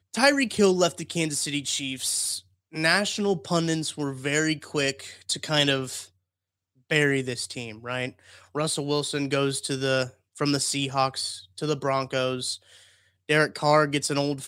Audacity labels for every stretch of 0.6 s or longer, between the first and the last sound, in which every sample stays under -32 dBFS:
6.020000	6.910000	silence
12.550000	13.290000	silence